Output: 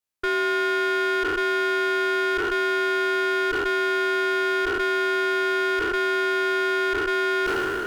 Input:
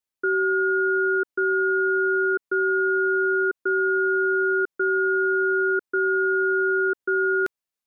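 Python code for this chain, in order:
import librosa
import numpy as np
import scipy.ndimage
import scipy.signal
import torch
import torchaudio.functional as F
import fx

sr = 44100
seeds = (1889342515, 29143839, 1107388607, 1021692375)

y = fx.spec_trails(x, sr, decay_s=2.83)
y = fx.leveller(y, sr, passes=1)
y = fx.clip_asym(y, sr, top_db=-28.5, bottom_db=-16.5)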